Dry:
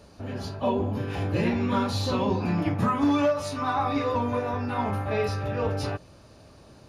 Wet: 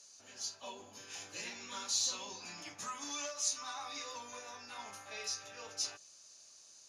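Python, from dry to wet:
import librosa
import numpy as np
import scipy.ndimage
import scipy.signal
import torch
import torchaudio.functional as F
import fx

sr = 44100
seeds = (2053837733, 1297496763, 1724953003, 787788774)

y = fx.bandpass_q(x, sr, hz=6500.0, q=5.7)
y = y * 10.0 ** (13.5 / 20.0)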